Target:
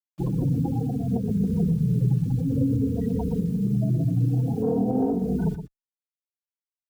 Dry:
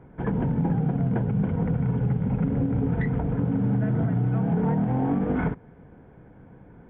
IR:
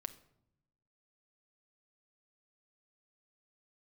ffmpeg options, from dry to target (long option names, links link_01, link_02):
-filter_complex "[0:a]acrossover=split=82|180|1600[link_01][link_02][link_03][link_04];[link_01]acompressor=threshold=-40dB:ratio=4[link_05];[link_02]acompressor=threshold=-27dB:ratio=4[link_06];[link_03]acompressor=threshold=-26dB:ratio=4[link_07];[link_04]acompressor=threshold=-59dB:ratio=4[link_08];[link_05][link_06][link_07][link_08]amix=inputs=4:normalize=0,asettb=1/sr,asplit=3[link_09][link_10][link_11];[link_09]atrim=end=4.624[link_12];[link_10]atrim=start=4.62:end=5.18,asetpts=PTS-STARTPTS,afade=type=in:duration=0.004:curve=qsin,afade=type=out:start_time=0.556:duration=0.004:curve=qsin,equalizer=frequency=400:width=0.94:gain=12.5[link_13];[link_11]atrim=start=5.176[link_14];[link_12][link_13]acrossfade=duration=0.004:curve1=hsin:curve2=qsin[link_15];[link_15][link_14]acrossfade=duration=0.004:curve1=qsin:curve2=hsin,afftfilt=real='re*gte(hypot(re,im),0.0794)':imag='im*gte(hypot(re,im),0.0794)':win_size=1024:overlap=0.75,highshelf=frequency=2300:gain=3.5,acrossover=split=1100[link_16][link_17];[link_16]acontrast=67[link_18];[link_18][link_17]amix=inputs=2:normalize=0,acrusher=bits=7:mix=0:aa=0.000001,bandreject=frequency=2000:width=12,aecho=1:1:119:0.266,alimiter=limit=-13dB:level=0:latency=1:release=210,asplit=2[link_19][link_20];[link_20]adelay=2.9,afreqshift=-0.53[link_21];[link_19][link_21]amix=inputs=2:normalize=1"